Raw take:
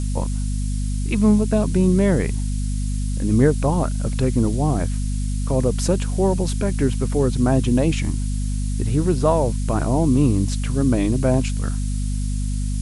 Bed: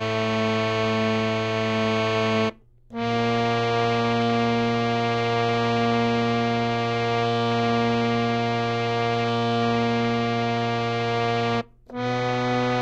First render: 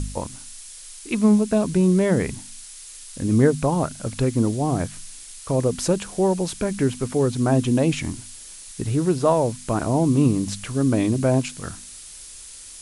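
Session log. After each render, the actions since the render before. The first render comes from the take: de-hum 50 Hz, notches 5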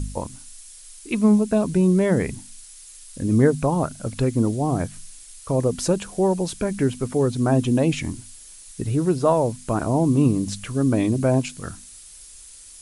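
noise reduction 6 dB, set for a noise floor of -41 dBFS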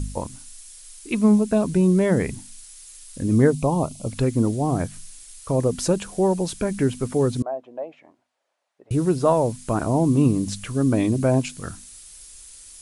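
3.53–4.10 s: Butterworth band-stop 1.6 kHz, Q 1.5; 7.42–8.91 s: ladder band-pass 720 Hz, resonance 60%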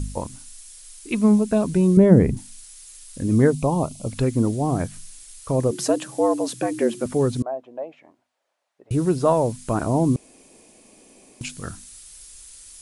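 1.97–2.37 s: tilt shelf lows +9 dB, about 850 Hz; 5.71–7.06 s: frequency shift +110 Hz; 10.16–11.41 s: room tone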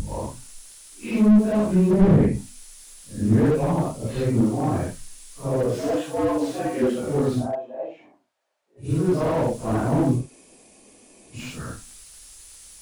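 phase randomisation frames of 200 ms; slew-rate limiter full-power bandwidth 58 Hz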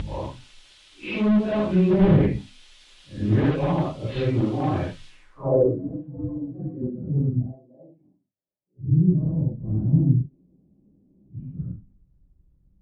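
low-pass sweep 3.3 kHz -> 180 Hz, 5.08–5.89 s; comb of notches 230 Hz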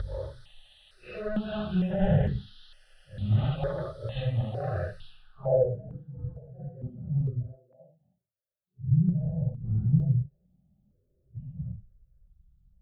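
static phaser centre 1.5 kHz, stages 8; stepped phaser 2.2 Hz 750–2300 Hz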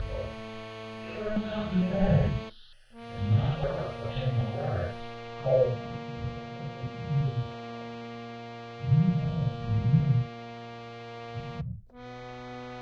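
add bed -18 dB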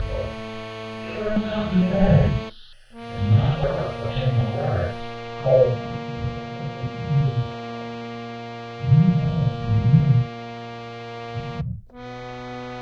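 trim +7.5 dB

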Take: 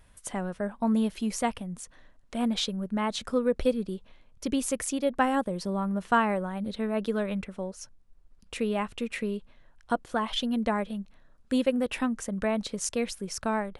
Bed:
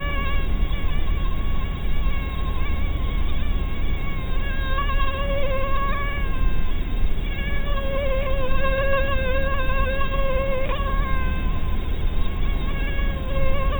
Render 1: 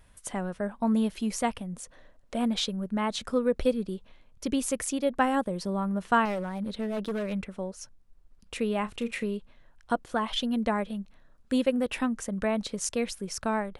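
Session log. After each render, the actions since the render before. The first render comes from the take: 1.73–2.39 s: peaking EQ 540 Hz +7.5 dB; 6.25–7.33 s: hard clipper -27 dBFS; 8.80–9.26 s: doubling 34 ms -12 dB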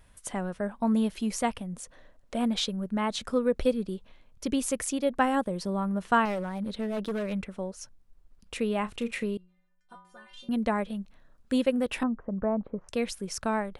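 9.37–10.49 s: inharmonic resonator 180 Hz, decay 0.62 s, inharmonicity 0.008; 12.03–12.89 s: low-pass 1.2 kHz 24 dB/octave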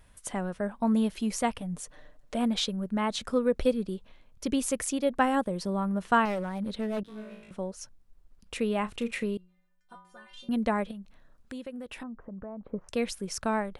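1.60–2.35 s: comb 6.7 ms, depth 63%; 7.03–7.51 s: feedback comb 54 Hz, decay 0.94 s, mix 100%; 10.91–12.67 s: compression 3:1, threshold -41 dBFS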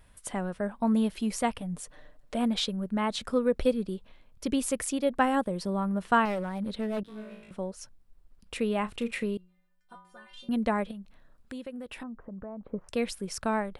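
peaking EQ 6.3 kHz -4 dB 0.32 oct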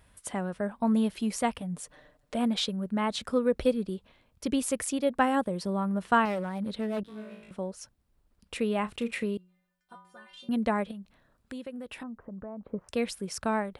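high-pass 44 Hz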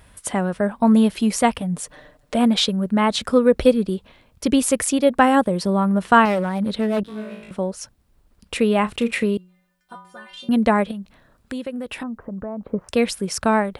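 trim +10.5 dB; peak limiter -2 dBFS, peak gain reduction 1.5 dB

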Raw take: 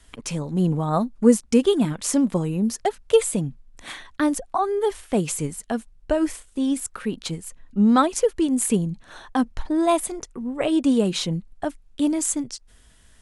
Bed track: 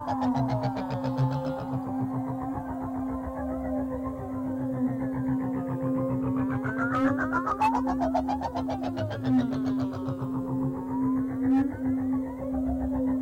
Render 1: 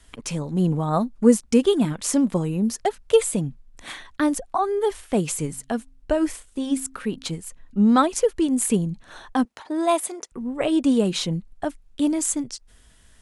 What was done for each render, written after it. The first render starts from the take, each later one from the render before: 5.44–7.29 s: de-hum 132.8 Hz, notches 2; 9.45–10.32 s: high-pass 350 Hz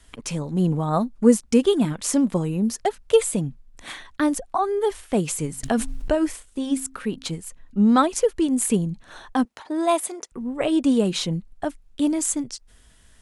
5.63–6.15 s: level flattener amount 70%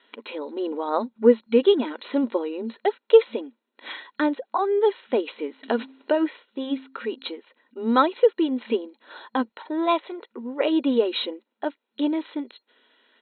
FFT band-pass 220–4200 Hz; comb 2.1 ms, depth 43%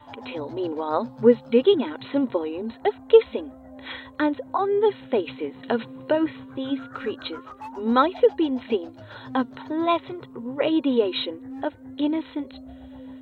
add bed track -14 dB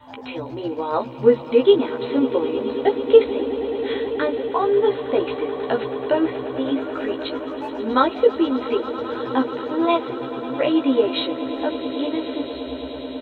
doubling 15 ms -2.5 dB; echo with a slow build-up 108 ms, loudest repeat 8, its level -17.5 dB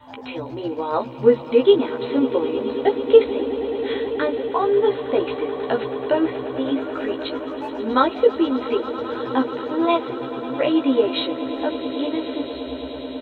no audible change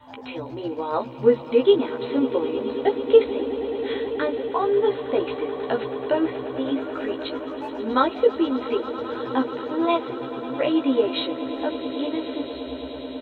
trim -2.5 dB

